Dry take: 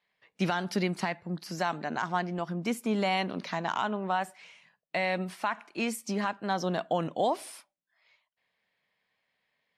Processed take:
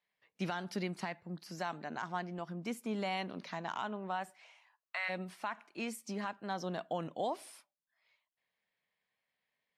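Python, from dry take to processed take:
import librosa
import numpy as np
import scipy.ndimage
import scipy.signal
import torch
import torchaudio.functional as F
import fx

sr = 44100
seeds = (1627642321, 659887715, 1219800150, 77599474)

y = fx.highpass_res(x, sr, hz=fx.line((4.4, 630.0), (5.08, 1400.0)), q=3.9, at=(4.4, 5.08), fade=0.02)
y = y * librosa.db_to_amplitude(-8.5)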